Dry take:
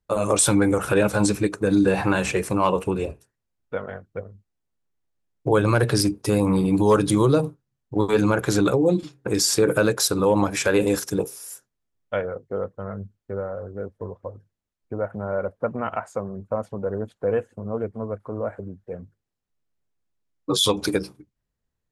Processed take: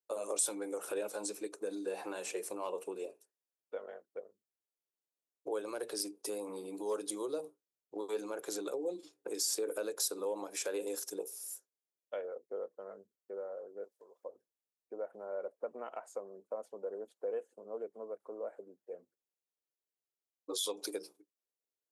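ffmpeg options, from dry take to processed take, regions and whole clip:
ffmpeg -i in.wav -filter_complex "[0:a]asettb=1/sr,asplit=3[link_01][link_02][link_03];[link_01]atrim=end=13.844[link_04];[link_02]atrim=start=13.84:end=14.24,asetpts=PTS-STARTPTS,afade=type=in:duration=0.004:curve=qsin,afade=type=out:start_time=0.396:duration=0.004:curve=qsin,tiltshelf=frequency=1200:gain=-9,acompressor=threshold=-46dB:ratio=2:attack=3.2:release=140:knee=1:detection=peak[link_05];[link_03]atrim=start=14.236[link_06];[link_04][link_05]acrossfade=duration=0.004:curve1=hsin:curve2=qsin[link_07];[link_07][link_06]acrossfade=duration=0.004:curve1=qsin:curve2=hsin,acompressor=threshold=-25dB:ratio=2,highpass=frequency=400:width=0.5412,highpass=frequency=400:width=1.3066,equalizer=frequency=1600:width=0.43:gain=-14,volume=-4dB" out.wav

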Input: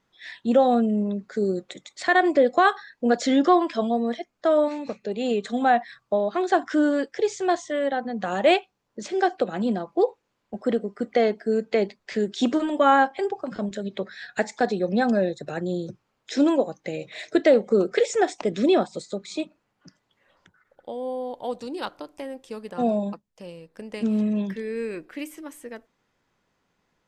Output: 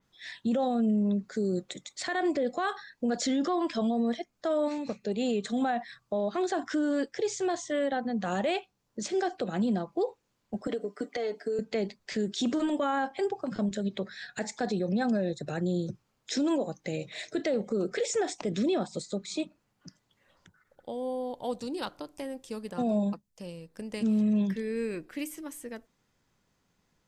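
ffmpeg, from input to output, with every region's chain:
ffmpeg -i in.wav -filter_complex "[0:a]asettb=1/sr,asplit=3[link_01][link_02][link_03];[link_01]atrim=end=10.674[link_04];[link_02]atrim=start=10.67:end=11.59,asetpts=PTS-STARTPTS,afade=type=in:duration=0.004:curve=qsin,afade=type=out:start_time=0.916:duration=0.004:curve=qsin,highpass=frequency=240:width=0.5412,highpass=frequency=240:width=1.3066,aecho=1:1:6.8:0.55,atrim=end_sample=40572,acompressor=threshold=-24dB:ratio=10:attack=3.2:release=140:knee=1:detection=peak[link_05];[link_03]atrim=start=11.586[link_06];[link_04][link_05]acrossfade=duration=0.004:curve1=hsin:curve2=qsin[link_07];[link_07][link_06]acrossfade=duration=0.004:curve1=qsin:curve2=hsin,bass=frequency=250:gain=7,treble=frequency=4000:gain=8,alimiter=limit=-17dB:level=0:latency=1:release=34,adynamicequalizer=threshold=0.00447:dfrequency=4500:dqfactor=0.7:tfrequency=4500:tqfactor=0.7:attack=5:release=100:ratio=0.375:range=1.5:mode=cutabove:tftype=highshelf,volume=-4dB" out.wav

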